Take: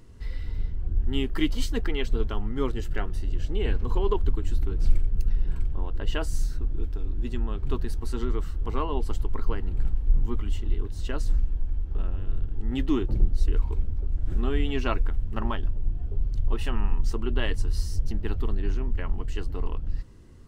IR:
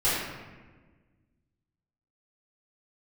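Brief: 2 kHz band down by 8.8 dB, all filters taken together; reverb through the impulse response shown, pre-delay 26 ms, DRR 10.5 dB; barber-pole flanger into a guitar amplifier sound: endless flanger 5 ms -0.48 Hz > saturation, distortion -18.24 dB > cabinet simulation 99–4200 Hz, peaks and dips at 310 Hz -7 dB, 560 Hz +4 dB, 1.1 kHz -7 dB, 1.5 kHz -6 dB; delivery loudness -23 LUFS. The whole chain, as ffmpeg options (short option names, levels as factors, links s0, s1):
-filter_complex "[0:a]equalizer=f=2000:t=o:g=-8.5,asplit=2[s0][s1];[1:a]atrim=start_sample=2205,adelay=26[s2];[s1][s2]afir=irnorm=-1:irlink=0,volume=0.0631[s3];[s0][s3]amix=inputs=2:normalize=0,asplit=2[s4][s5];[s5]adelay=5,afreqshift=-0.48[s6];[s4][s6]amix=inputs=2:normalize=1,asoftclip=threshold=0.211,highpass=99,equalizer=f=310:t=q:w=4:g=-7,equalizer=f=560:t=q:w=4:g=4,equalizer=f=1100:t=q:w=4:g=-7,equalizer=f=1500:t=q:w=4:g=-6,lowpass=f=4200:w=0.5412,lowpass=f=4200:w=1.3066,volume=7.08"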